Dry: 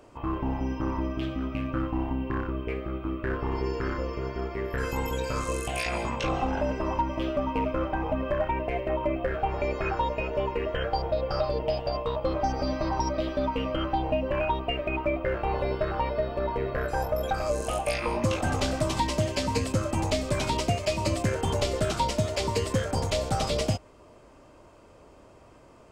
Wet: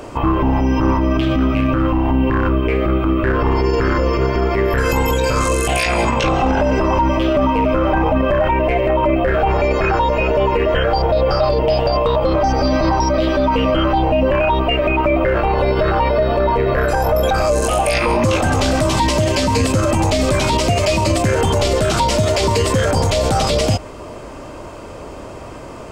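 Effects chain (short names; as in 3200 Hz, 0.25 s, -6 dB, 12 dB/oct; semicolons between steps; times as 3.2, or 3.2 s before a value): maximiser +27.5 dB; gain -7 dB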